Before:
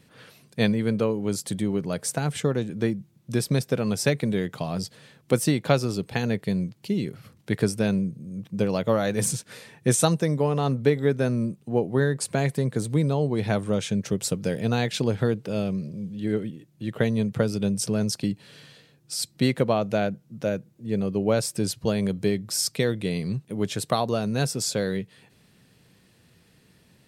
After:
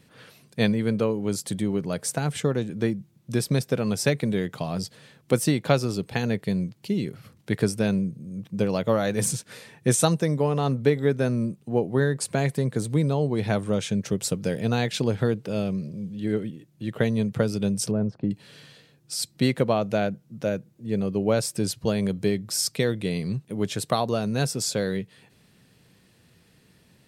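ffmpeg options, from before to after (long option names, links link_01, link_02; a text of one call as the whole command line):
ffmpeg -i in.wav -filter_complex "[0:a]asettb=1/sr,asplit=3[link_01][link_02][link_03];[link_01]atrim=end=17.914[link_04];[link_02]atrim=start=17.91:end=18.31,asetpts=PTS-STARTPTS,afade=type=in:duration=0.004:curve=qsin,afade=type=out:start_time=0.396:duration=0.004:curve=qsin,lowpass=1000[link_05];[link_03]atrim=start=18.306[link_06];[link_04][link_05]acrossfade=duration=0.004:curve1=hsin:curve2=qsin[link_07];[link_07][link_06]acrossfade=duration=0.004:curve1=qsin:curve2=hsin" out.wav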